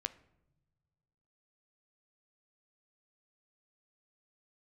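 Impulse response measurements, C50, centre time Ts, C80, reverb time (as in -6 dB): 16.5 dB, 4 ms, 20.0 dB, not exponential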